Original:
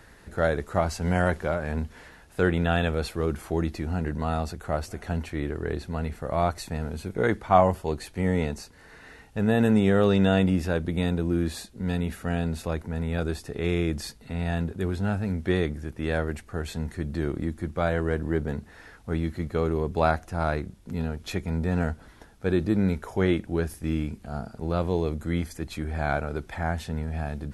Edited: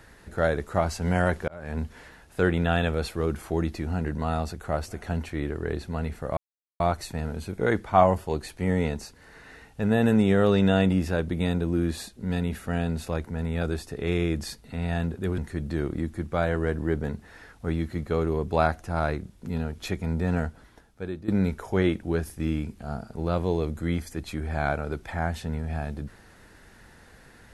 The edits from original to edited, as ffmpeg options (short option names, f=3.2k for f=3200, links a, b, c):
-filter_complex "[0:a]asplit=5[a][b][c][d][e];[a]atrim=end=1.48,asetpts=PTS-STARTPTS,afade=t=out:st=1.476:d=0.004:c=hsin[f];[b]atrim=start=1.48:end=6.37,asetpts=PTS-STARTPTS,afade=t=in:d=0.34,afade=t=out:st=4.886:d=0.004:c=hsin,apad=pad_dur=0.43[g];[c]atrim=start=6.37:end=14.952,asetpts=PTS-STARTPTS,afade=t=in:d=0.004:c=hsin[h];[d]atrim=start=16.818:end=22.72,asetpts=PTS-STARTPTS,afade=t=out:st=4.942:d=0.96:silence=0.16788[i];[e]atrim=start=22.72,asetpts=PTS-STARTPTS,afade=t=in:d=0.004:c=hsin:silence=0.16788[j];[f][g][h]concat=n=3:v=0:a=1[k];[i][j]concat=n=2:v=0:a=1[l];[k][l]acrossfade=d=0.004:c1=hsin:c2=hsin"